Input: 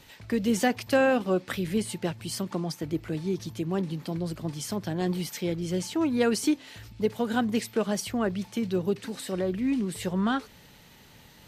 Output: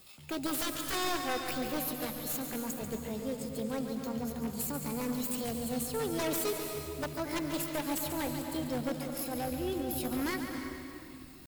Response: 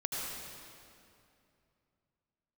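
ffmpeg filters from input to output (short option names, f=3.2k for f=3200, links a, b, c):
-filter_complex "[0:a]aemphasis=mode=production:type=50fm,bandreject=f=4.3k:w=5.2,asubboost=boost=4.5:cutoff=110,aeval=exprs='0.282*(cos(1*acos(clip(val(0)/0.282,-1,1)))-cos(1*PI/2))+0.0112*(cos(2*acos(clip(val(0)/0.282,-1,1)))-cos(2*PI/2))+0.00708*(cos(4*acos(clip(val(0)/0.282,-1,1)))-cos(4*PI/2))+0.00631*(cos(5*acos(clip(val(0)/0.282,-1,1)))-cos(5*PI/2))+0.02*(cos(7*acos(clip(val(0)/0.282,-1,1)))-cos(7*PI/2))':c=same,aeval=exprs='0.0631*(abs(mod(val(0)/0.0631+3,4)-2)-1)':c=same,asetrate=60591,aresample=44100,atempo=0.727827,acrusher=bits=6:mode=log:mix=0:aa=0.000001,asplit=2[a][b];[1:a]atrim=start_sample=2205,adelay=141[c];[b][c]afir=irnorm=-1:irlink=0,volume=-7.5dB[d];[a][d]amix=inputs=2:normalize=0,volume=-3.5dB"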